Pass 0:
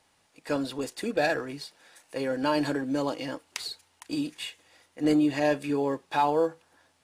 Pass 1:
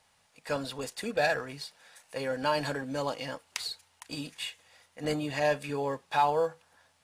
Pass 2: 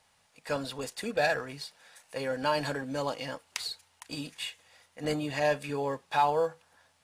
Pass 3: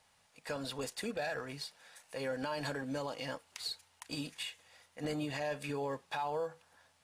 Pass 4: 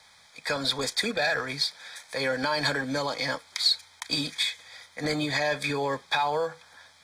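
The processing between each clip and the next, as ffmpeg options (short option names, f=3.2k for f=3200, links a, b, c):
-af "equalizer=f=320:t=o:w=0.55:g=-14"
-af anull
-af "alimiter=level_in=2dB:limit=-24dB:level=0:latency=1:release=120,volume=-2dB,volume=-2dB"
-filter_complex "[0:a]acrossover=split=260|430|4500[a][b][c][d];[c]crystalizer=i=8:c=0[e];[a][b][e][d]amix=inputs=4:normalize=0,asuperstop=centerf=2800:order=12:qfactor=5,volume=7.5dB"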